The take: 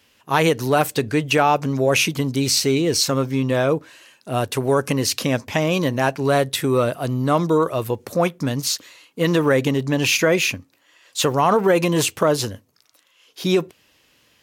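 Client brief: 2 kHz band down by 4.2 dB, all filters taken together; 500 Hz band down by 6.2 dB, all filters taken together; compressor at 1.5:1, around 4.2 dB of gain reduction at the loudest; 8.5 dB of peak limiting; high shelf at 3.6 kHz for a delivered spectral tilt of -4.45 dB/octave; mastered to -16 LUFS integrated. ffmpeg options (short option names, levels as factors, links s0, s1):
-af "equalizer=f=500:t=o:g=-7.5,equalizer=f=2000:t=o:g=-7,highshelf=f=3600:g=4,acompressor=threshold=0.0562:ratio=1.5,volume=3.35,alimiter=limit=0.531:level=0:latency=1"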